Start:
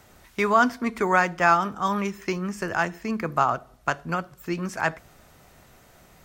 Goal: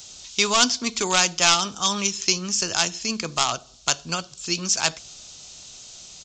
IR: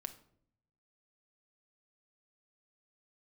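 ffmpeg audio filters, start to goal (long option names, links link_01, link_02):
-af "aresample=16000,aeval=exprs='clip(val(0),-1,0.15)':channel_layout=same,aresample=44100,aexciter=amount=13.5:drive=5.5:freq=2900,volume=-2.5dB"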